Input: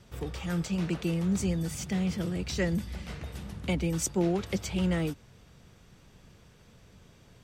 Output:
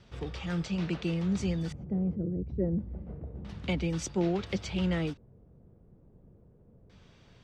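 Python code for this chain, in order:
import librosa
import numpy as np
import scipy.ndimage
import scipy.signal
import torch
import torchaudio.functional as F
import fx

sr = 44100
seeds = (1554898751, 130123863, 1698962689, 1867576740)

y = fx.envelope_sharpen(x, sr, power=1.5, at=(2.14, 2.63), fade=0.02)
y = fx.filter_lfo_lowpass(y, sr, shape='square', hz=0.29, low_hz=480.0, high_hz=4400.0, q=1.1)
y = y * librosa.db_to_amplitude(-1.5)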